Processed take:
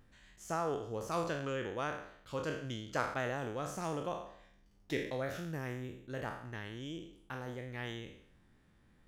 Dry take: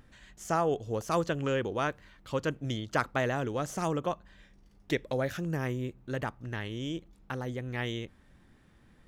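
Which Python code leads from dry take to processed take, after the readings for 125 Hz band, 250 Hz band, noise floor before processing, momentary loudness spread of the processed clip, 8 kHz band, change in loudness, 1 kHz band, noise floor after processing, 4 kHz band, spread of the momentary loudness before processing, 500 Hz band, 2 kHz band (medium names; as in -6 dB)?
-8.0 dB, -7.5 dB, -61 dBFS, 9 LU, -5.5 dB, -6.5 dB, -5.5 dB, -67 dBFS, -6.0 dB, 9 LU, -6.5 dB, -5.5 dB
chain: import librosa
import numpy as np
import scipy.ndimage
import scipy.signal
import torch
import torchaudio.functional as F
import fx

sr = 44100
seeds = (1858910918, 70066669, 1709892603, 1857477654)

y = fx.spec_trails(x, sr, decay_s=0.66)
y = y * 10.0 ** (-8.5 / 20.0)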